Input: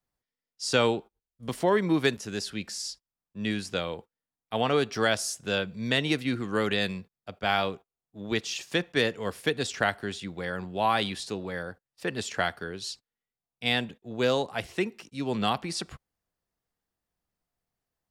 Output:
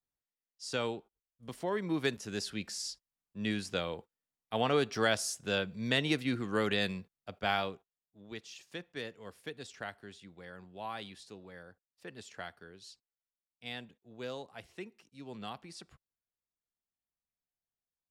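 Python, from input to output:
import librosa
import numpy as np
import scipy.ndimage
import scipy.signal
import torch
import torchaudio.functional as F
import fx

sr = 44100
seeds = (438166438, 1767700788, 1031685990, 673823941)

y = fx.gain(x, sr, db=fx.line((1.68, -11.0), (2.37, -4.0), (7.43, -4.0), (8.25, -16.0)))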